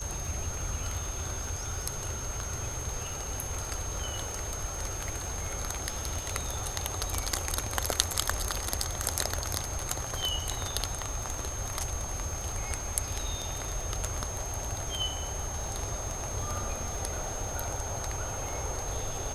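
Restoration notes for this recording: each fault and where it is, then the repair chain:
surface crackle 43 per second −40 dBFS
whistle 6,400 Hz −38 dBFS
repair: click removal
notch filter 6,400 Hz, Q 30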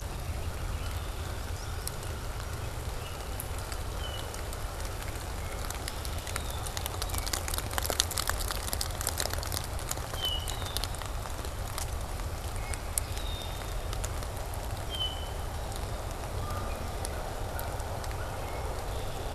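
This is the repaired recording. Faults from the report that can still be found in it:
none of them is left

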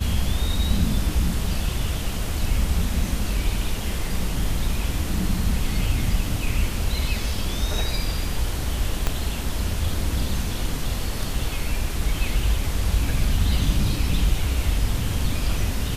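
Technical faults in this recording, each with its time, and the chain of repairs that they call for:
0:09.07: click −8 dBFS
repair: click removal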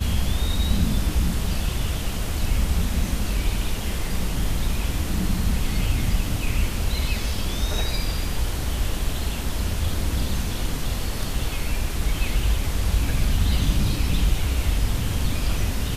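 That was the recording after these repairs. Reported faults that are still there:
0:09.07: click

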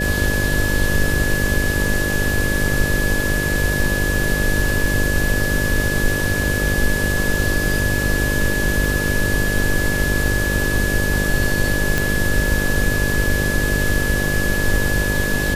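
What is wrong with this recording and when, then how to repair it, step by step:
mains buzz 50 Hz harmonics 12 −23 dBFS
surface crackle 22 per second −27 dBFS
whistle 1,700 Hz −22 dBFS
0:11.98: click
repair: click removal
hum removal 50 Hz, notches 12
notch filter 1,700 Hz, Q 30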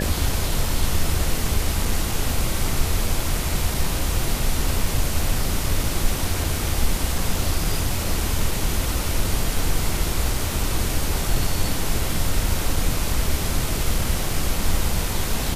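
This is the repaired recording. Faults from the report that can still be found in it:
none of them is left

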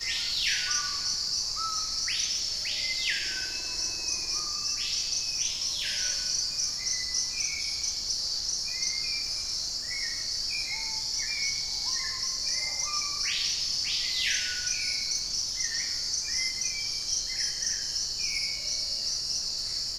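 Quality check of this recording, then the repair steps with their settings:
surface crackle 21 per second −38 dBFS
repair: click removal

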